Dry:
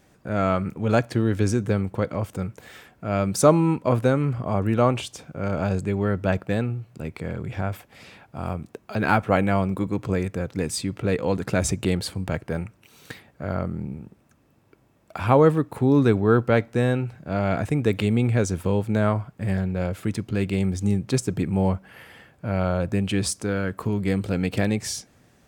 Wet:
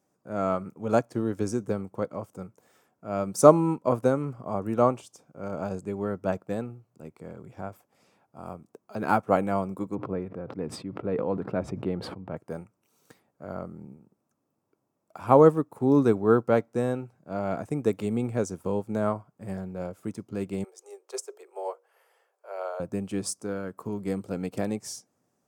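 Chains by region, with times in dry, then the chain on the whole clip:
9.95–12.37 s: distance through air 430 m + decay stretcher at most 31 dB/s
20.64–22.80 s: steep high-pass 390 Hz 72 dB/octave + hum notches 60/120/180/240/300/360/420/480/540 Hz
whole clip: Bessel high-pass 200 Hz, order 2; high-order bell 2.6 kHz -9.5 dB; upward expansion 1.5:1, over -44 dBFS; trim +2.5 dB

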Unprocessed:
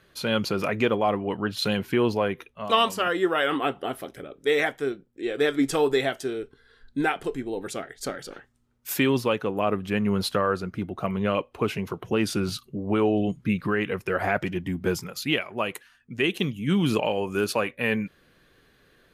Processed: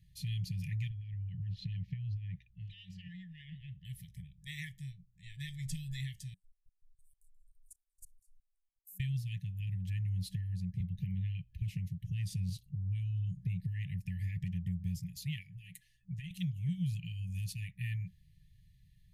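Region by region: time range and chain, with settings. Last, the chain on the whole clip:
0.89–3.85 s: distance through air 250 m + compression 5:1, threshold -26 dBFS
6.34–9.00 s: inverse Chebyshev band-stop 100–1700 Hz, stop band 80 dB + level held to a coarse grid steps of 21 dB
10.80–11.62 s: peaking EQ 8.3 kHz -13 dB 0.85 oct + three bands compressed up and down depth 70%
15.51–16.31 s: comb 5.8 ms, depth 77% + compression 3:1, threshold -33 dBFS
whole clip: FFT band-reject 190–1700 Hz; FFT filter 100 Hz 0 dB, 1.2 kHz -27 dB, 8.1 kHz -16 dB; compression 2.5:1, threshold -40 dBFS; trim +5.5 dB

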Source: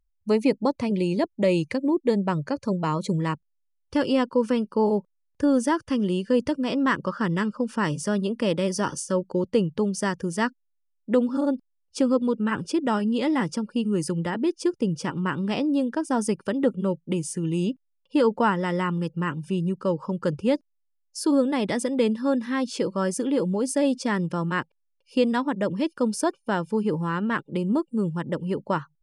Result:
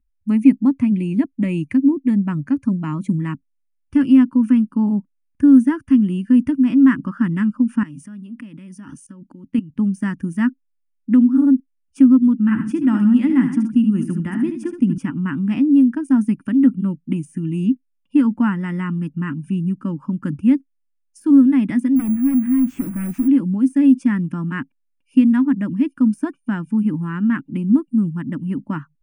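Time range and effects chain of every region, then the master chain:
7.83–9.79 s: peaking EQ 3.1 kHz +3 dB 1.5 oct + level held to a coarse grid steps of 20 dB
12.41–14.98 s: chunks repeated in reverse 149 ms, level -12 dB + delay 73 ms -9 dB
21.96–23.28 s: jump at every zero crossing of -31 dBFS + low-pass 4.2 kHz + careless resampling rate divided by 4×, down none, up zero stuff
whole clip: peaking EQ 9.4 kHz +14.5 dB 0.22 oct; de-esser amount 50%; FFT filter 170 Hz 0 dB, 270 Hz +10 dB, 450 Hz -24 dB, 690 Hz -15 dB, 1.6 kHz -4 dB, 2.6 kHz -5 dB, 4.3 kHz -25 dB, 6.5 kHz -14 dB, 9.9 kHz -17 dB; trim +4 dB

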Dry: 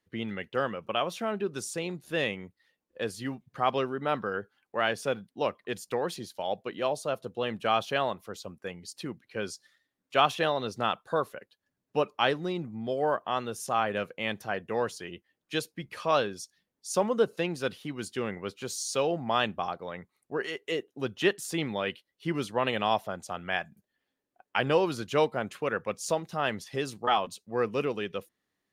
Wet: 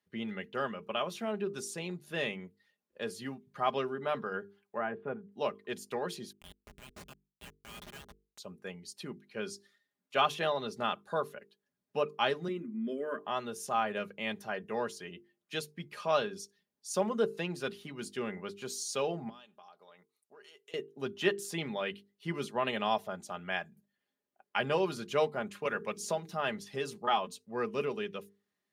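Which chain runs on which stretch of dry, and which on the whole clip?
4.78–5.32 s: Gaussian low-pass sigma 5.1 samples + upward compressor, threshold -45 dBFS + band-stop 560 Hz, Q 11
6.32–8.38 s: inverse Chebyshev high-pass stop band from 310 Hz, stop band 80 dB + Schmitt trigger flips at -37.5 dBFS
12.48–13.19 s: resonant low shelf 170 Hz -12.5 dB, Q 3 + static phaser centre 1.9 kHz, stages 4
19.29–20.74 s: high-pass 1.5 kHz 6 dB/octave + peaking EQ 1.9 kHz -9.5 dB 0.97 oct + compression 4:1, threshold -49 dBFS
25.65–26.32 s: de-hum 45.72 Hz, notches 10 + three bands compressed up and down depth 70%
whole clip: high-pass 60 Hz; hum notches 50/100/150/200/250/300/350/400/450 Hz; comb 4.9 ms, depth 51%; trim -5 dB

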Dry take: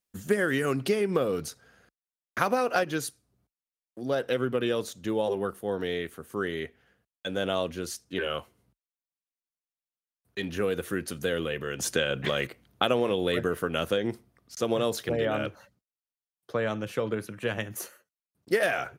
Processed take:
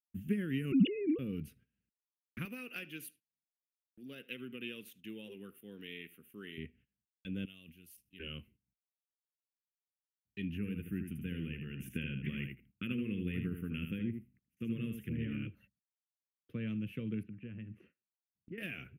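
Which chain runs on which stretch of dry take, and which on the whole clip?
0.72–1.19 s: formants replaced by sine waves + distance through air 290 m + level flattener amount 100%
2.45–6.58 s: high-pass 410 Hz 6 dB/octave + tilt EQ +2 dB/octave + filtered feedback delay 75 ms, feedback 21%, low-pass 4.4 kHz, level -19 dB
7.45–8.20 s: pre-emphasis filter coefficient 0.9 + decay stretcher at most 90 dB/s
10.57–15.47 s: static phaser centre 1.8 kHz, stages 4 + delay 78 ms -7 dB
17.23–18.58 s: low-pass 1.7 kHz + compression 1.5:1, threshold -44 dBFS
whole clip: FFT filter 120 Hz 0 dB, 220 Hz +7 dB, 470 Hz -3 dB, 850 Hz -18 dB, 1.7 kHz -10 dB, 2.7 kHz +2 dB, 4 kHz -22 dB, 7.3 kHz -27 dB, 12 kHz -9 dB; gate -55 dBFS, range -18 dB; amplifier tone stack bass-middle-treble 6-0-2; trim +10.5 dB

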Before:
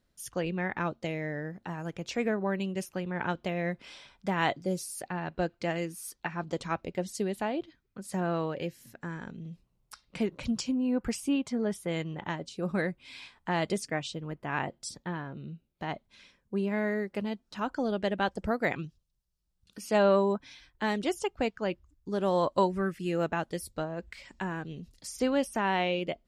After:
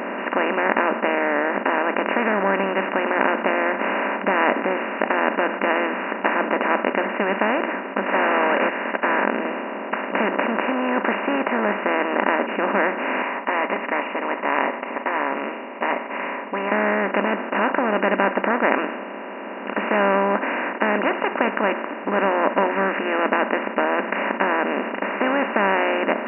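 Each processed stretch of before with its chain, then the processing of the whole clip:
8.06–9.25 s: high-pass 490 Hz + overdrive pedal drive 27 dB, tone 7.3 kHz, clips at -22.5 dBFS + upward expansion 2.5:1, over -50 dBFS
13.22–16.72 s: two resonant band-passes 1.5 kHz, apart 0.97 oct + comb 7.3 ms, depth 60%
whole clip: spectral levelling over time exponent 0.2; dynamic bell 1.6 kHz, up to +5 dB, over -33 dBFS, Q 0.9; FFT band-pass 190–2900 Hz; trim -1.5 dB

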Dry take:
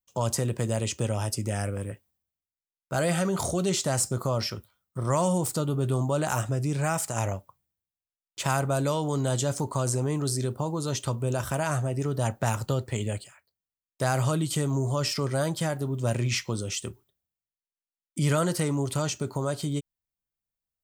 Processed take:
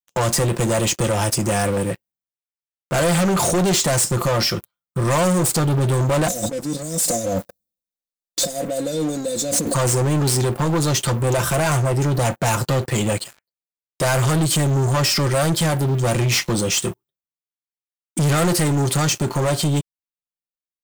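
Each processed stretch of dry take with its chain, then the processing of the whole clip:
6.28–9.74 s: compressor with a negative ratio -36 dBFS + brick-wall FIR band-stop 730–3400 Hz + comb 3.9 ms, depth 92%
whole clip: bass shelf 78 Hz -8.5 dB; comb 5.8 ms, depth 47%; waveshaping leveller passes 5; trim -3 dB

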